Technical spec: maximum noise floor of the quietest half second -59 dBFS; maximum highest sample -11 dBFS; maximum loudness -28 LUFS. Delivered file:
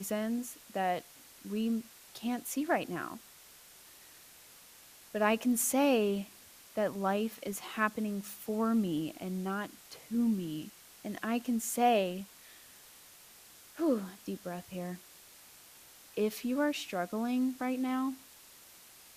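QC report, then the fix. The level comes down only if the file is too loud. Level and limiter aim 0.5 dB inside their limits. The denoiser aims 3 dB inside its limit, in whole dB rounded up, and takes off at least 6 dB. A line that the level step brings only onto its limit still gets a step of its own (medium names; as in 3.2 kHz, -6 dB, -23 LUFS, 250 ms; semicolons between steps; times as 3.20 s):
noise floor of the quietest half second -56 dBFS: fail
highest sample -14.5 dBFS: pass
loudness -33.5 LUFS: pass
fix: noise reduction 6 dB, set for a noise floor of -56 dBFS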